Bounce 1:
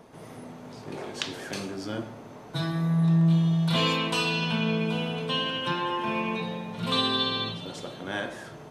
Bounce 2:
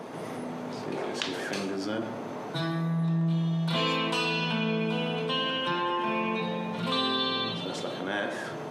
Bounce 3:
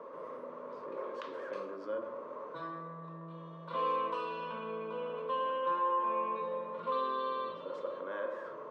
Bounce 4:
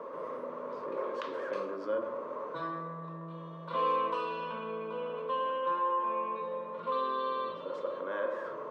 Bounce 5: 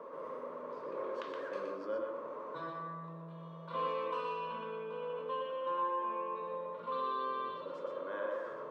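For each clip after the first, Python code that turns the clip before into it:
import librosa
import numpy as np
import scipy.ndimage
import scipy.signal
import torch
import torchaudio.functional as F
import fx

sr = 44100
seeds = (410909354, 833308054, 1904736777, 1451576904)

y1 = scipy.signal.sosfilt(scipy.signal.butter(2, 180.0, 'highpass', fs=sr, output='sos'), x)
y1 = fx.high_shelf(y1, sr, hz=5100.0, db=-7.0)
y1 = fx.env_flatten(y1, sr, amount_pct=50)
y1 = y1 * 10.0 ** (-2.5 / 20.0)
y2 = fx.double_bandpass(y1, sr, hz=760.0, octaves=0.98)
y2 = y2 * 10.0 ** (1.5 / 20.0)
y3 = fx.rider(y2, sr, range_db=3, speed_s=2.0)
y3 = y3 * 10.0 ** (2.0 / 20.0)
y4 = y3 + 10.0 ** (-4.5 / 20.0) * np.pad(y3, (int(120 * sr / 1000.0), 0))[:len(y3)]
y4 = y4 * 10.0 ** (-5.5 / 20.0)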